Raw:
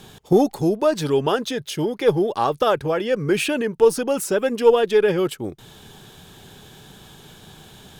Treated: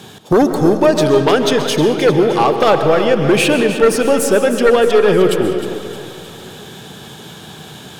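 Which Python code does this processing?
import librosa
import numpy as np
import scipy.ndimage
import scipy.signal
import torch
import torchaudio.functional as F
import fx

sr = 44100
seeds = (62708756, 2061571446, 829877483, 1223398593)

p1 = scipy.signal.sosfilt(scipy.signal.butter(2, 110.0, 'highpass', fs=sr, output='sos'), x)
p2 = fx.high_shelf(p1, sr, hz=12000.0, db=-6.0)
p3 = fx.rider(p2, sr, range_db=10, speed_s=0.5)
p4 = p2 + F.gain(torch.from_numpy(p3), -2.0).numpy()
p5 = fx.fold_sine(p4, sr, drive_db=7, ceiling_db=1.0)
p6 = p5 + fx.echo_split(p5, sr, split_hz=370.0, low_ms=102, high_ms=309, feedback_pct=52, wet_db=-11.5, dry=0)
p7 = fx.rev_freeverb(p6, sr, rt60_s=1.7, hf_ratio=0.55, predelay_ms=90, drr_db=7.5)
y = F.gain(torch.from_numpy(p7), -7.5).numpy()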